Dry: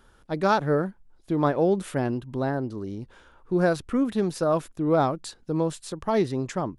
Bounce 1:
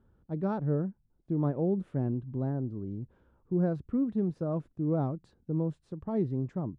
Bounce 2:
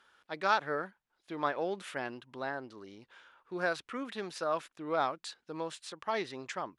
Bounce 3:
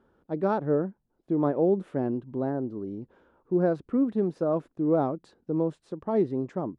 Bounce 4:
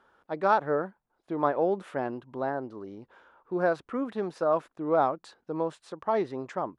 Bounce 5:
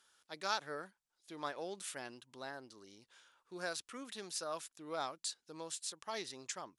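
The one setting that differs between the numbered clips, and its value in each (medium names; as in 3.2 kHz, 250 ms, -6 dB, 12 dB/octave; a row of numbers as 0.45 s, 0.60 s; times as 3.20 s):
band-pass filter, frequency: 120 Hz, 2.4 kHz, 320 Hz, 900 Hz, 6.6 kHz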